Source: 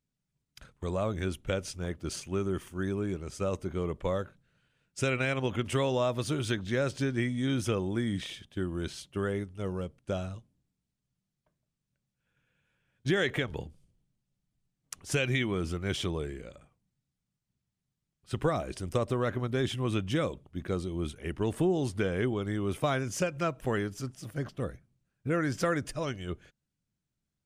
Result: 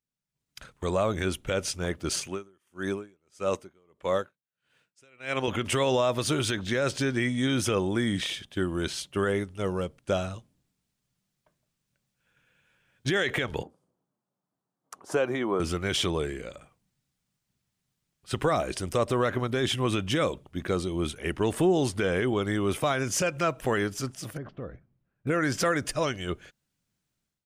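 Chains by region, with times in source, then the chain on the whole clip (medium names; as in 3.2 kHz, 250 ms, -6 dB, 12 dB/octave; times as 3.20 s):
2.27–5.48 s: high-pass 170 Hz 6 dB/octave + logarithmic tremolo 1.6 Hz, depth 37 dB
13.63–15.60 s: high-pass 260 Hz + resonant high shelf 1.6 kHz -14 dB, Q 1.5
24.37–25.27 s: compression 2.5:1, threshold -39 dBFS + tape spacing loss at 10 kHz 44 dB
whole clip: bass shelf 310 Hz -8 dB; peak limiter -24.5 dBFS; level rider gain up to 14 dB; trim -5 dB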